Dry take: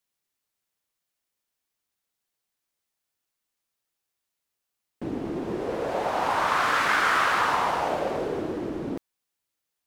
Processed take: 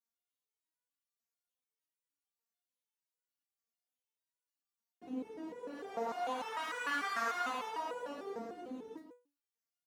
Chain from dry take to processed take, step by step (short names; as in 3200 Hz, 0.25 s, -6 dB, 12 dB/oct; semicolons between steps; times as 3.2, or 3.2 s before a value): HPF 84 Hz 24 dB/oct; comb 4.2 ms, depth 68%; echo 0.135 s -8.5 dB; stepped resonator 6.7 Hz 230–490 Hz; gain -1.5 dB